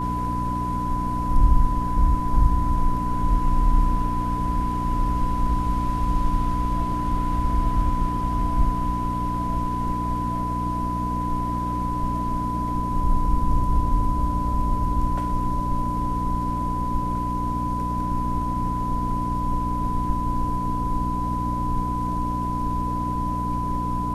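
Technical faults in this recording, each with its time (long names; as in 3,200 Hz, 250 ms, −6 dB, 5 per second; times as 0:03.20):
mains hum 60 Hz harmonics 5 −28 dBFS
whistle 1,000 Hz −26 dBFS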